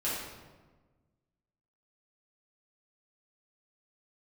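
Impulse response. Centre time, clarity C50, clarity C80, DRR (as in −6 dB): 77 ms, −0.5 dB, 2.5 dB, −9.0 dB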